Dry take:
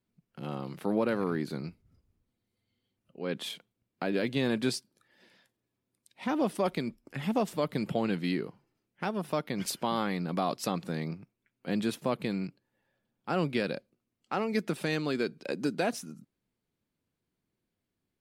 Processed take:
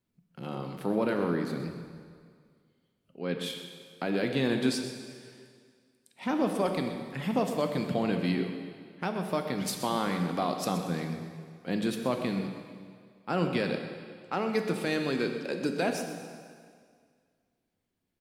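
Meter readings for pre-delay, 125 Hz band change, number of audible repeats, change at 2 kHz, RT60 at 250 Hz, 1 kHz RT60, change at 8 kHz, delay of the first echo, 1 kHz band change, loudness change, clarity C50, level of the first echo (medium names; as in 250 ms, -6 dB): 6 ms, +1.5 dB, 1, +1.5 dB, 2.0 s, 2.0 s, +1.0 dB, 126 ms, +1.5 dB, +1.5 dB, 5.5 dB, -13.0 dB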